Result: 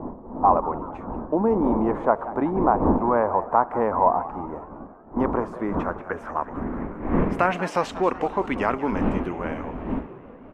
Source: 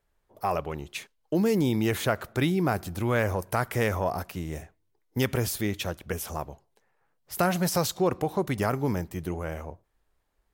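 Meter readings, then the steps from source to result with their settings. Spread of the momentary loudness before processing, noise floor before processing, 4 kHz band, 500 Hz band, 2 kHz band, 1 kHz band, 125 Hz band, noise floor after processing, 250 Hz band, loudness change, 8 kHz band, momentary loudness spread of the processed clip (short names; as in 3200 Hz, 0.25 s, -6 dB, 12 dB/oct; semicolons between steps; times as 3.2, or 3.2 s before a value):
12 LU, -73 dBFS, n/a, +5.0 dB, 0.0 dB, +10.5 dB, -3.0 dB, -43 dBFS, +4.5 dB, +4.0 dB, under -15 dB, 12 LU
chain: wind noise 180 Hz -27 dBFS; ten-band EQ 125 Hz -10 dB, 250 Hz +10 dB, 500 Hz +4 dB, 1000 Hz +12 dB, 2000 Hz +3 dB, 4000 Hz -6 dB, 8000 Hz +7 dB; frequency-shifting echo 0.186 s, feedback 56%, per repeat +120 Hz, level -16 dB; low-pass sweep 930 Hz -> 2800 Hz, 5.06–7.71; high shelf 3900 Hz +7.5 dB; gain -6 dB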